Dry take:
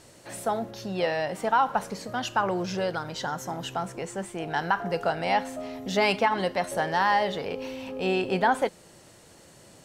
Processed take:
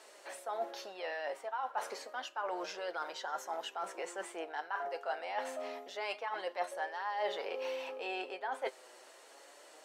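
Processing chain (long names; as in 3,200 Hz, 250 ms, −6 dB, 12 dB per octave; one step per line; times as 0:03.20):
Bessel high-pass filter 610 Hz, order 6
high-shelf EQ 3,400 Hz −9 dB
reversed playback
downward compressor 8 to 1, threshold −37 dBFS, peak gain reduction 17 dB
reversed playback
flanger 0.28 Hz, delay 4.6 ms, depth 3.5 ms, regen +51%
level +6 dB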